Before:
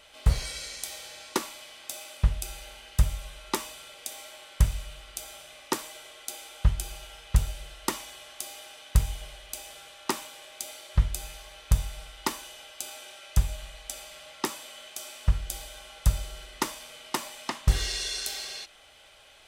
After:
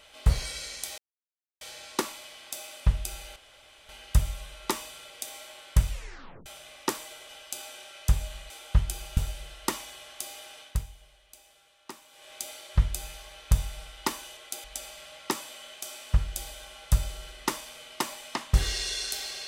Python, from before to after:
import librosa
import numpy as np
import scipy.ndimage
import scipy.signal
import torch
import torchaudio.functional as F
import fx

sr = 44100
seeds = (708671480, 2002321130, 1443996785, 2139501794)

y = fx.edit(x, sr, fx.insert_silence(at_s=0.98, length_s=0.63),
    fx.insert_room_tone(at_s=2.73, length_s=0.53),
    fx.tape_stop(start_s=4.74, length_s=0.56),
    fx.swap(start_s=6.13, length_s=0.27, other_s=12.57, other_length_s=1.21),
    fx.cut(start_s=7.07, length_s=0.3),
    fx.fade_down_up(start_s=8.81, length_s=1.71, db=-14.5, fade_s=0.33, curve='qua'), tone=tone)